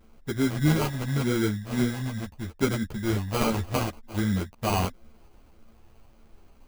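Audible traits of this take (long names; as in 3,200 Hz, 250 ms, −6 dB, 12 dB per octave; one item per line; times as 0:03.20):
a buzz of ramps at a fixed pitch in blocks of 8 samples
phaser sweep stages 4, 0.8 Hz, lowest notch 360–1,200 Hz
aliases and images of a low sample rate 1,800 Hz, jitter 0%
a shimmering, thickened sound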